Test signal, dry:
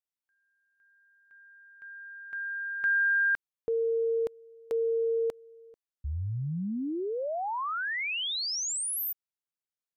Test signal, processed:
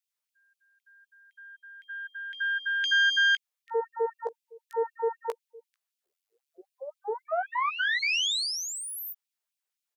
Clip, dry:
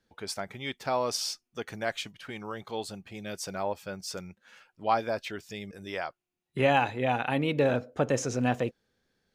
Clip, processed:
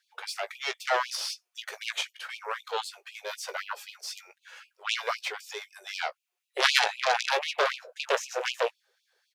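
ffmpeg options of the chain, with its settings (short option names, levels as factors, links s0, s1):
-filter_complex "[0:a]acrossover=split=4000[s0][s1];[s1]acompressor=threshold=0.00562:ratio=4:attack=1:release=60[s2];[s0][s2]amix=inputs=2:normalize=0,aeval=exprs='0.316*(cos(1*acos(clip(val(0)/0.316,-1,1)))-cos(1*PI/2))+0.158*(cos(3*acos(clip(val(0)/0.316,-1,1)))-cos(3*PI/2))+0.0282*(cos(8*acos(clip(val(0)/0.316,-1,1)))-cos(8*PI/2))':c=same,asplit=2[s3][s4];[s4]acompressor=threshold=0.01:ratio=6:attack=75:release=62:detection=rms,volume=0.891[s5];[s3][s5]amix=inputs=2:normalize=0,asplit=2[s6][s7];[s7]adelay=17,volume=0.335[s8];[s6][s8]amix=inputs=2:normalize=0,afftfilt=real='re*gte(b*sr/1024,370*pow(2400/370,0.5+0.5*sin(2*PI*3.9*pts/sr)))':imag='im*gte(b*sr/1024,370*pow(2400/370,0.5+0.5*sin(2*PI*3.9*pts/sr)))':win_size=1024:overlap=0.75,volume=2.11"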